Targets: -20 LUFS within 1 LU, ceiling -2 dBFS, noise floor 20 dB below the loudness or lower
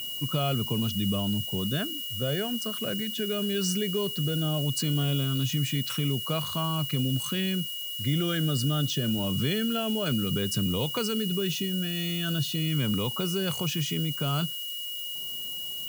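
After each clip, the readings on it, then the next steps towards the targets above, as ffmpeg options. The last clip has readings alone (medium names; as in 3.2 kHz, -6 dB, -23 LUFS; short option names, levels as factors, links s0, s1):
steady tone 2.9 kHz; tone level -34 dBFS; noise floor -35 dBFS; noise floor target -48 dBFS; loudness -28.0 LUFS; peak level -14.5 dBFS; loudness target -20.0 LUFS
-> -af "bandreject=f=2900:w=30"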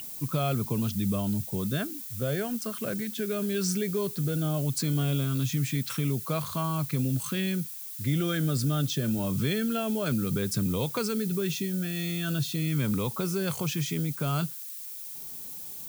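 steady tone not found; noise floor -40 dBFS; noise floor target -49 dBFS
-> -af "afftdn=nr=9:nf=-40"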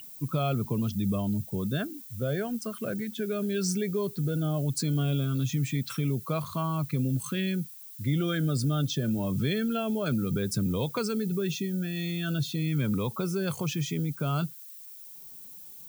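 noise floor -46 dBFS; noise floor target -50 dBFS
-> -af "afftdn=nr=6:nf=-46"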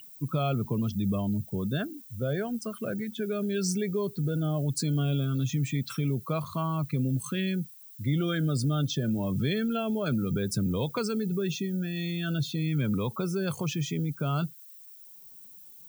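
noise floor -50 dBFS; loudness -30.0 LUFS; peak level -16.5 dBFS; loudness target -20.0 LUFS
-> -af "volume=3.16"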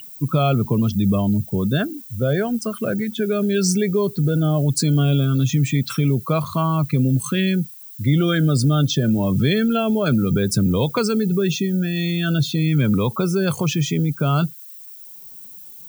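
loudness -20.0 LUFS; peak level -6.5 dBFS; noise floor -40 dBFS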